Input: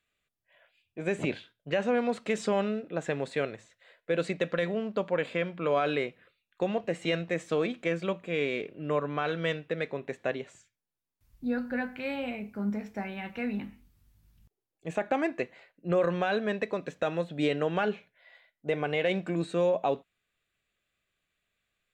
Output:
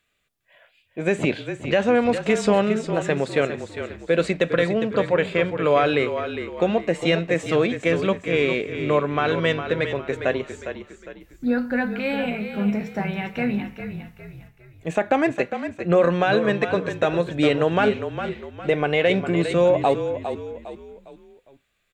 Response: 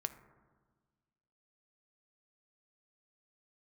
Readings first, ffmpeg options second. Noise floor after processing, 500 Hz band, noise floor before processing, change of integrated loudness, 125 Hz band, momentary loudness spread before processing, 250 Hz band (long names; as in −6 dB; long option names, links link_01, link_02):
−62 dBFS, +9.0 dB, below −85 dBFS, +8.5 dB, +10.0 dB, 9 LU, +9.0 dB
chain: -filter_complex "[0:a]asplit=5[link_01][link_02][link_03][link_04][link_05];[link_02]adelay=406,afreqshift=-36,volume=-9dB[link_06];[link_03]adelay=812,afreqshift=-72,volume=-17.2dB[link_07];[link_04]adelay=1218,afreqshift=-108,volume=-25.4dB[link_08];[link_05]adelay=1624,afreqshift=-144,volume=-33.5dB[link_09];[link_01][link_06][link_07][link_08][link_09]amix=inputs=5:normalize=0,volume=8.5dB"